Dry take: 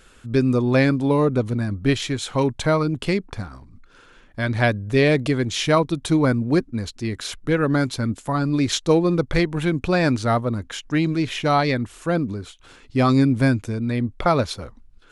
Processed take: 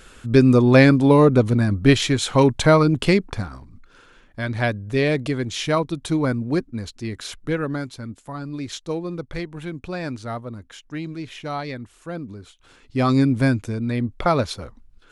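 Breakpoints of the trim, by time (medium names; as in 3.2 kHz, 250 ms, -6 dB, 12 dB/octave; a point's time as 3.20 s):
3.08 s +5 dB
4.47 s -3 dB
7.51 s -3 dB
7.92 s -10 dB
12.15 s -10 dB
13.17 s -0.5 dB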